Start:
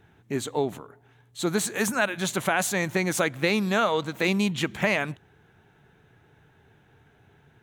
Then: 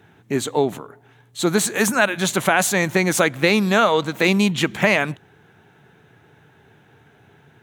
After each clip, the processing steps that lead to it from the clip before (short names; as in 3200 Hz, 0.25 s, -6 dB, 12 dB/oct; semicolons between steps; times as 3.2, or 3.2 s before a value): HPF 110 Hz; gain +7 dB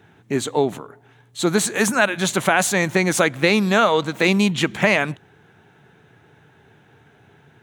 bell 14000 Hz -13 dB 0.21 oct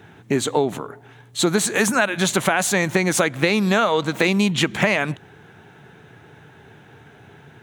compressor 3:1, threshold -23 dBFS, peak gain reduction 9 dB; gain +6 dB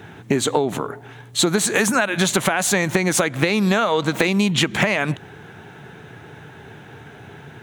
compressor 5:1, threshold -21 dBFS, peak gain reduction 8 dB; gain +6 dB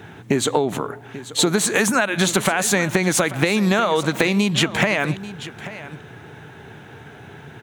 echo 0.838 s -15.5 dB